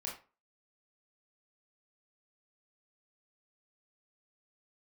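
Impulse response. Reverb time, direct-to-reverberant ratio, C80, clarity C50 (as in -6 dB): 0.35 s, -3.5 dB, 12.0 dB, 6.5 dB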